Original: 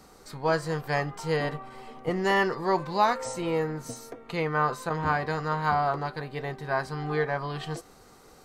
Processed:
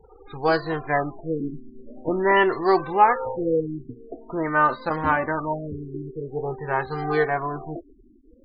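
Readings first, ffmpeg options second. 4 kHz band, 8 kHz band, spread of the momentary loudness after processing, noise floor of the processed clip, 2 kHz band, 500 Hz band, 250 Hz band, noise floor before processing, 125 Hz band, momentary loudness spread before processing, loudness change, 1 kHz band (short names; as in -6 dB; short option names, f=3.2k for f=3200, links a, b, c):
-1.0 dB, under -35 dB, 15 LU, -54 dBFS, +4.5 dB, +5.0 dB, +5.0 dB, -54 dBFS, -0.5 dB, 11 LU, +4.5 dB, +5.0 dB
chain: -af "flanger=delay=2.2:depth=1.4:regen=14:speed=0.3:shape=triangular,afftfilt=real='re*gte(hypot(re,im),0.00447)':imag='im*gte(hypot(re,im),0.00447)':win_size=1024:overlap=0.75,afftfilt=real='re*lt(b*sr/1024,400*pow(5000/400,0.5+0.5*sin(2*PI*0.46*pts/sr)))':imag='im*lt(b*sr/1024,400*pow(5000/400,0.5+0.5*sin(2*PI*0.46*pts/sr)))':win_size=1024:overlap=0.75,volume=9dB"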